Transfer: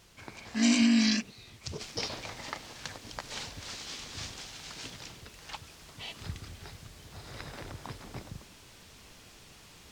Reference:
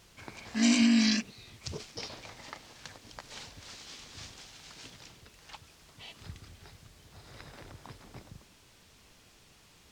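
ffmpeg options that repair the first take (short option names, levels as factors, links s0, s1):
-af "asetnsamples=n=441:p=0,asendcmd='1.81 volume volume -6dB',volume=1"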